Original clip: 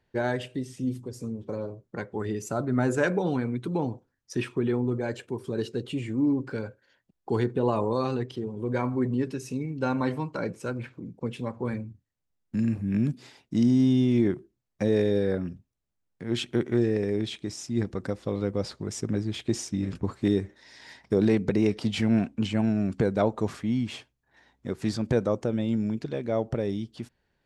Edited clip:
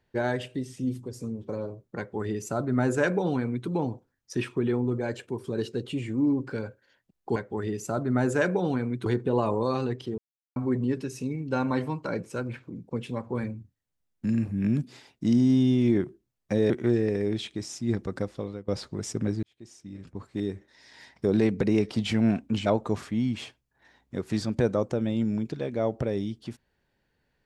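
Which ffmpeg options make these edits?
-filter_complex "[0:a]asplit=9[s0][s1][s2][s3][s4][s5][s6][s7][s8];[s0]atrim=end=7.362[s9];[s1]atrim=start=1.978:end=3.682[s10];[s2]atrim=start=7.358:end=8.48,asetpts=PTS-STARTPTS,afade=t=out:st=1.118:d=0.004:c=hsin[s11];[s3]atrim=start=8.48:end=8.86,asetpts=PTS-STARTPTS,volume=0[s12];[s4]atrim=start=8.86:end=15.002,asetpts=PTS-STARTPTS,afade=t=in:d=0.004:c=hsin[s13];[s5]atrim=start=16.578:end=18.56,asetpts=PTS-STARTPTS,afade=t=out:st=1.542:d=0.44:silence=0.0841395[s14];[s6]atrim=start=18.56:end=19.31,asetpts=PTS-STARTPTS,afade=t=in:d=0.004:c=hsin:silence=0.0841395,afade=t=out:st=0.746:d=0.004:c=hsin[s15];[s7]atrim=start=19.31:end=22.542,asetpts=PTS-STARTPTS,afade=t=in:d=2.15[s16];[s8]atrim=start=23.178[s17];[s9][s10]acrossfade=d=0.004:c1=hsin:c2=hsin[s18];[s11][s12][s13]concat=n=3:v=0:a=1[s19];[s18][s19]acrossfade=d=0.004:c1=hsin:c2=hsin[s20];[s14][s15][s16]concat=n=3:v=0:a=1[s21];[s20][s21]acrossfade=d=0.004:c1=hsin:c2=hsin[s22];[s22][s17]acrossfade=d=0.004:c1=hsin:c2=hsin"

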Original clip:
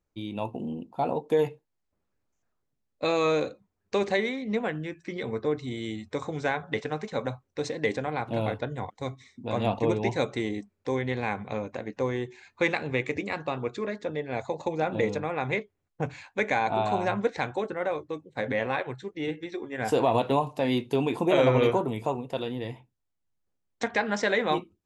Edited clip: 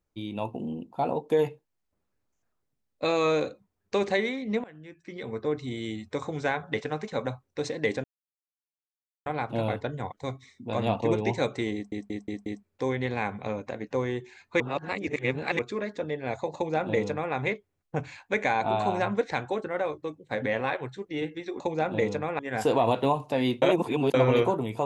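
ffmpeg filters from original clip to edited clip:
-filter_complex "[0:a]asplit=13[s0][s1][s2][s3][s4][s5][s6][s7][s8][s9][s10][s11][s12];[s0]atrim=end=4.64,asetpts=PTS-STARTPTS,afade=t=out:st=4.636:d=0.004:c=hsin:silence=0.0707946[s13];[s1]atrim=start=4.64:end=8.04,asetpts=PTS-STARTPTS,afade=t=in:d=0.98:silence=0.0707946,afade=t=out:st=3.396:d=0.004:c=hsin,apad=pad_dur=1.22[s14];[s2]atrim=start=8.04:end=10.702,asetpts=PTS-STARTPTS,afade=t=in:d=0.004:c=hsin[s15];[s3]atrim=start=10.518:end=10.702[s16];[s4]atrim=start=10.518:end=10.702[s17];[s5]atrim=start=10.518:end=10.702[s18];[s6]atrim=start=10.518:end=12.662[s19];[s7]atrim=start=12.658:end=13.652,asetpts=PTS-STARTPTS,areverse[s20];[s8]atrim=start=13.648:end=19.662[s21];[s9]atrim=start=14.608:end=15.402[s22];[s10]atrim=start=19.658:end=20.892[s23];[s11]atrim=start=20.888:end=21.412,asetpts=PTS-STARTPTS,areverse[s24];[s12]atrim=start=21.408[s25];[s13][s14][s15]concat=n=3:v=0:a=1[s26];[s26][s16]acrossfade=d=0.004:c1=hsin:c2=hsin[s27];[s27][s17]acrossfade=d=0.004:c1=hsin:c2=hsin[s28];[s28][s18]acrossfade=d=0.004:c1=hsin:c2=hsin[s29];[s29][s19]acrossfade=d=0.004:c1=hsin:c2=hsin[s30];[s30][s20]acrossfade=d=0.004:c1=hsin:c2=hsin[s31];[s31][s21]acrossfade=d=0.004:c1=hsin:c2=hsin[s32];[s32][s22]acrossfade=d=0.004:c1=hsin:c2=hsin[s33];[s33][s23]acrossfade=d=0.004:c1=hsin:c2=hsin[s34];[s34][s24]acrossfade=d=0.004:c1=hsin:c2=hsin[s35];[s35][s25]acrossfade=d=0.004:c1=hsin:c2=hsin"

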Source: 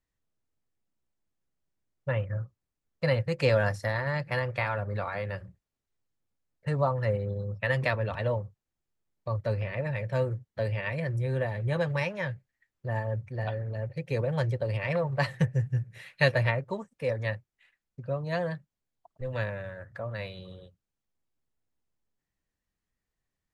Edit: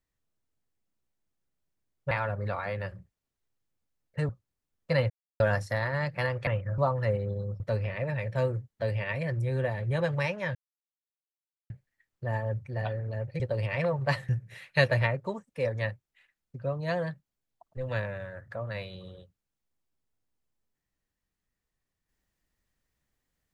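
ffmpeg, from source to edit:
-filter_complex "[0:a]asplit=11[s0][s1][s2][s3][s4][s5][s6][s7][s8][s9][s10];[s0]atrim=end=2.112[s11];[s1]atrim=start=4.598:end=6.782[s12];[s2]atrim=start=2.418:end=3.23,asetpts=PTS-STARTPTS,afade=t=out:st=0.808:d=0.004:c=hsin[s13];[s3]atrim=start=3.23:end=3.53,asetpts=PTS-STARTPTS,volume=0[s14];[s4]atrim=start=3.53:end=4.602,asetpts=PTS-STARTPTS,afade=t=in:d=0.004:c=hsin[s15];[s5]atrim=start=2.108:end=2.422[s16];[s6]atrim=start=6.778:end=7.602[s17];[s7]atrim=start=9.368:end=12.32,asetpts=PTS-STARTPTS,afade=t=out:st=2.948:d=0.004:c=hsin,apad=pad_dur=1.15[s18];[s8]atrim=start=12.32:end=14.022,asetpts=PTS-STARTPTS,afade=t=in:d=0.004:c=hsin[s19];[s9]atrim=start=14.508:end=15.402[s20];[s10]atrim=start=15.728[s21];[s11][s12]acrossfade=d=0.004:c1=hsin:c2=hsin[s22];[s13][s14][s15]concat=n=3:v=0:a=1[s23];[s22][s23]acrossfade=d=0.004:c1=hsin:c2=hsin[s24];[s24][s16]acrossfade=d=0.004:c1=hsin:c2=hsin[s25];[s25][s17]acrossfade=d=0.004:c1=hsin:c2=hsin[s26];[s18][s19]concat=n=2:v=0:a=1[s27];[s26][s27]acrossfade=d=0.004:c1=hsin:c2=hsin[s28];[s28][s20]acrossfade=d=0.004:c1=hsin:c2=hsin[s29];[s29][s21]acrossfade=d=0.004:c1=hsin:c2=hsin"

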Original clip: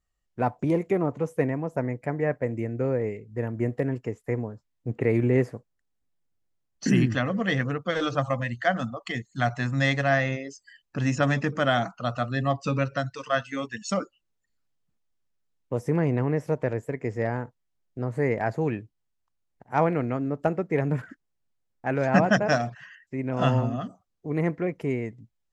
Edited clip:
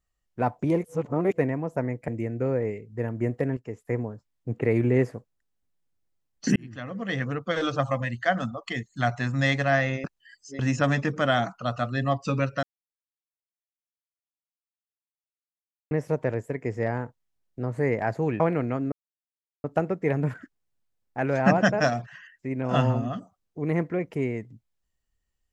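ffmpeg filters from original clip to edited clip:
-filter_complex "[0:a]asplit=12[s0][s1][s2][s3][s4][s5][s6][s7][s8][s9][s10][s11];[s0]atrim=end=0.842[s12];[s1]atrim=start=0.838:end=1.382,asetpts=PTS-STARTPTS,areverse[s13];[s2]atrim=start=1.378:end=2.082[s14];[s3]atrim=start=2.468:end=3.96,asetpts=PTS-STARTPTS,afade=t=out:st=1.488:d=0.004:c=hsin:silence=0.223872[s15];[s4]atrim=start=3.96:end=6.95,asetpts=PTS-STARTPTS,afade=t=in:d=0.27:silence=0.223872,afade=t=out:st=2.986:d=0.004:c=hsin[s16];[s5]atrim=start=6.95:end=10.432,asetpts=PTS-STARTPTS,afade=t=in:d=0.89[s17];[s6]atrim=start=10.428:end=10.982,asetpts=PTS-STARTPTS,areverse[s18];[s7]atrim=start=10.978:end=13.02,asetpts=PTS-STARTPTS,afade=t=out:st=2.038:d=0.004:c=hsin[s19];[s8]atrim=start=13.02:end=16.3,asetpts=PTS-STARTPTS,volume=0[s20];[s9]atrim=start=16.3:end=18.792,asetpts=PTS-STARTPTS,afade=t=in:d=0.004:c=hsin[s21];[s10]atrim=start=19.798:end=20.32,asetpts=PTS-STARTPTS,afade=t=out:st=0.518:d=0.004:c=hsin,apad=pad_dur=0.72[s22];[s11]atrim=start=20.32,asetpts=PTS-STARTPTS,afade=t=in:d=0.004:c=hsin[s23];[s12][s13]acrossfade=d=0.004:c1=hsin:c2=hsin[s24];[s24][s14]acrossfade=d=0.004:c1=hsin:c2=hsin[s25];[s15][s16][s17]concat=n=3:v=0:a=1[s26];[s25][s26]acrossfade=d=0.004:c1=hsin:c2=hsin[s27];[s27][s18]acrossfade=d=0.004:c1=hsin:c2=hsin[s28];[s19][s20][s21]concat=n=3:v=0:a=1[s29];[s28][s29]acrossfade=d=0.004:c1=hsin:c2=hsin[s30];[s22][s23]concat=n=2:v=0:a=1[s31];[s30][s31]acrossfade=d=0.004:c1=hsin:c2=hsin"

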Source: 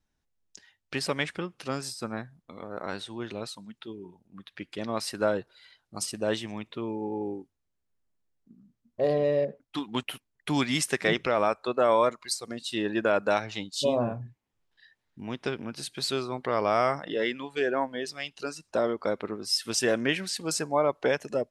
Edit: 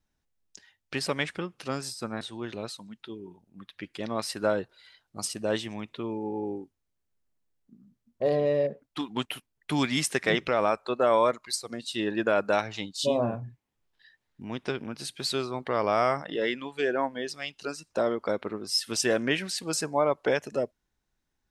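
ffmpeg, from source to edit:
-filter_complex "[0:a]asplit=2[s0][s1];[s0]atrim=end=2.212[s2];[s1]atrim=start=2.988[s3];[s2][s3]acrossfade=d=0.004:c1=hsin:c2=hsin"

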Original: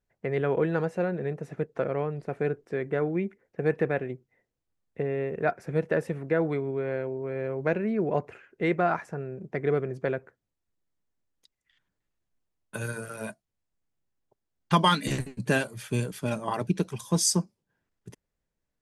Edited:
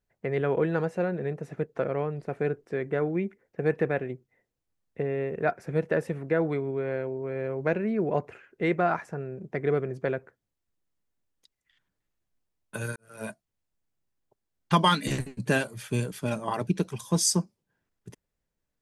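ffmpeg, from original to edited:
-filter_complex "[0:a]asplit=2[s0][s1];[s0]atrim=end=12.96,asetpts=PTS-STARTPTS,afade=t=out:st=12.956:d=0.004:c=hsin[s2];[s1]atrim=start=12.96,asetpts=PTS-STARTPTS,afade=t=in:d=0.28:c=qua[s3];[s2][s3]concat=n=2:v=0:a=1"

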